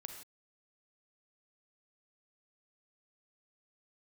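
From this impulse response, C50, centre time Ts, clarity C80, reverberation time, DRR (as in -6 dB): 5.5 dB, 26 ms, 7.5 dB, no single decay rate, 4.5 dB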